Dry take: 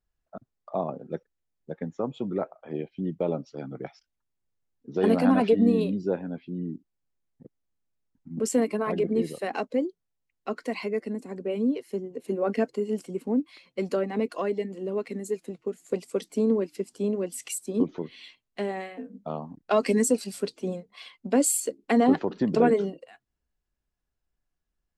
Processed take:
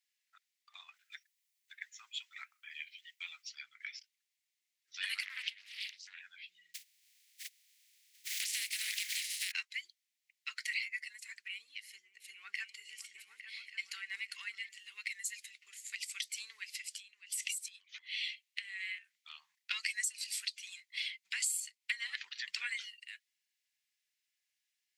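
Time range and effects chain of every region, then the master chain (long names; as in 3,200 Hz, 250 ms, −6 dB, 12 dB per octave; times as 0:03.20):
0:00.94–0:03.49: high-pass filter 570 Hz + high-shelf EQ 8,900 Hz +9.5 dB
0:05.23–0:06.21: low-shelf EQ 340 Hz −11.5 dB + downward compressor 8 to 1, threshold −32 dBFS + highs frequency-modulated by the lows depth 0.48 ms
0:06.74–0:09.50: compressing power law on the bin magnitudes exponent 0.29 + high-pass filter 1,400 Hz + downward compressor 2.5 to 1, threshold −43 dBFS
0:11.48–0:14.69: tilt shelving filter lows +6 dB, about 660 Hz + echo whose low-pass opens from repeat to repeat 285 ms, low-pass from 200 Hz, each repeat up 2 octaves, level −6 dB
0:16.82–0:19.25: parametric band 2,700 Hz +3 dB 0.72 octaves + downward compressor 8 to 1, threshold −38 dBFS
whole clip: elliptic high-pass filter 2,000 Hz, stop band 70 dB; high-shelf EQ 7,000 Hz −5.5 dB; downward compressor 6 to 1, threshold −45 dBFS; level +11 dB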